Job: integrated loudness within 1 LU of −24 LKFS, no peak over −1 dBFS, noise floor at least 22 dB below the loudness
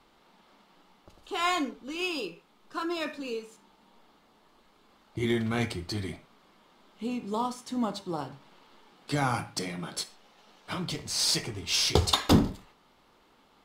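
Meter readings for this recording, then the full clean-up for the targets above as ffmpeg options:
integrated loudness −30.0 LKFS; sample peak −7.5 dBFS; target loudness −24.0 LKFS
→ -af "volume=6dB"

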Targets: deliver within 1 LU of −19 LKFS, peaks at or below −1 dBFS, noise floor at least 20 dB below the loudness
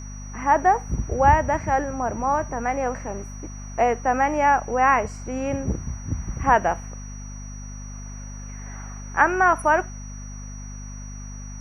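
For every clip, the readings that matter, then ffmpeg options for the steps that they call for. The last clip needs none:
mains hum 50 Hz; hum harmonics up to 250 Hz; level of the hum −34 dBFS; interfering tone 5,800 Hz; level of the tone −43 dBFS; integrated loudness −22.0 LKFS; sample peak −3.0 dBFS; target loudness −19.0 LKFS
→ -af "bandreject=frequency=50:width_type=h:width=4,bandreject=frequency=100:width_type=h:width=4,bandreject=frequency=150:width_type=h:width=4,bandreject=frequency=200:width_type=h:width=4,bandreject=frequency=250:width_type=h:width=4"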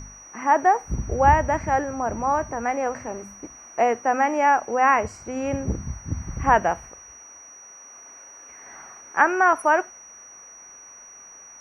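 mains hum none found; interfering tone 5,800 Hz; level of the tone −43 dBFS
→ -af "bandreject=frequency=5800:width=30"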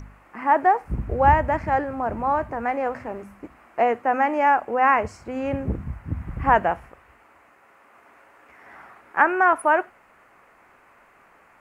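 interfering tone none found; integrated loudness −22.0 LKFS; sample peak −3.0 dBFS; target loudness −19.0 LKFS
→ -af "volume=3dB,alimiter=limit=-1dB:level=0:latency=1"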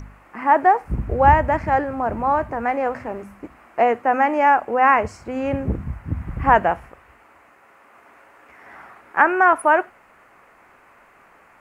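integrated loudness −19.0 LKFS; sample peak −1.0 dBFS; background noise floor −53 dBFS

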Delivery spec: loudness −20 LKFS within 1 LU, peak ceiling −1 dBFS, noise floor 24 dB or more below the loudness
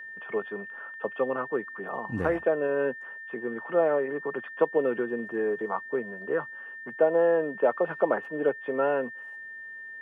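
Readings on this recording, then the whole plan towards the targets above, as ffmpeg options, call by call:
interfering tone 1,800 Hz; level of the tone −39 dBFS; integrated loudness −28.5 LKFS; sample peak −10.5 dBFS; target loudness −20.0 LKFS
→ -af "bandreject=frequency=1800:width=30"
-af "volume=8.5dB"

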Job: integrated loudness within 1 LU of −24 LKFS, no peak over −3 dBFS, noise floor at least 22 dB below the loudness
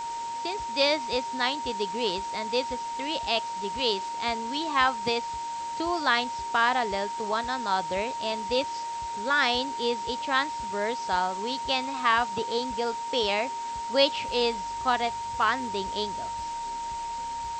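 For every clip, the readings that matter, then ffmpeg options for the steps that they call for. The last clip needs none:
interfering tone 930 Hz; level of the tone −31 dBFS; background noise floor −34 dBFS; target noise floor −50 dBFS; integrated loudness −27.5 LKFS; sample peak −8.5 dBFS; target loudness −24.0 LKFS
→ -af "bandreject=frequency=930:width=30"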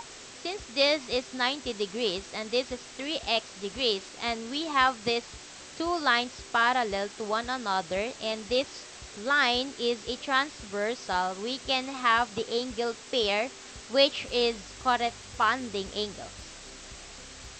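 interfering tone none found; background noise floor −46 dBFS; target noise floor −51 dBFS
→ -af "afftdn=noise_reduction=6:noise_floor=-46"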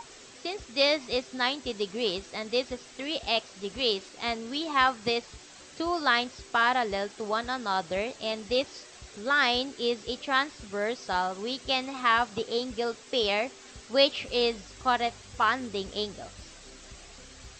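background noise floor −50 dBFS; target noise floor −51 dBFS
→ -af "afftdn=noise_reduction=6:noise_floor=-50"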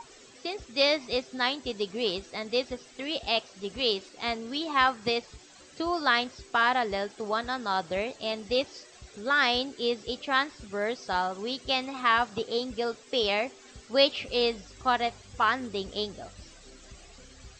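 background noise floor −53 dBFS; integrated loudness −28.5 LKFS; sample peak −9.0 dBFS; target loudness −24.0 LKFS
→ -af "volume=4.5dB"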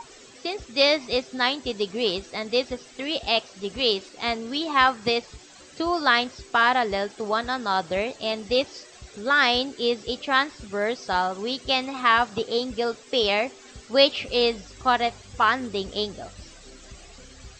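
integrated loudness −24.0 LKFS; sample peak −4.5 dBFS; background noise floor −48 dBFS

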